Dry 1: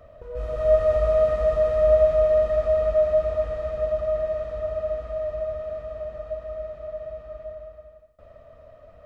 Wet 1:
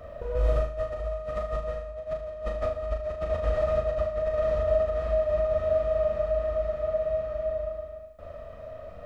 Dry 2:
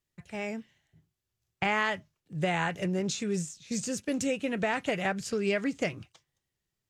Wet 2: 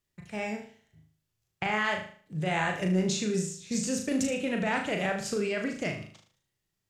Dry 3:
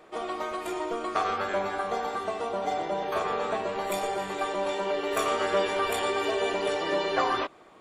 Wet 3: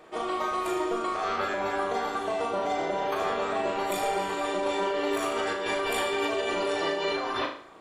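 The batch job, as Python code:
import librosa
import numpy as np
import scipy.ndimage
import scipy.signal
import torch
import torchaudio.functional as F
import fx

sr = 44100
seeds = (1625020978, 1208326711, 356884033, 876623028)

p1 = fx.over_compress(x, sr, threshold_db=-29.0, ratio=-1.0)
y = p1 + fx.room_flutter(p1, sr, wall_m=6.5, rt60_s=0.47, dry=0)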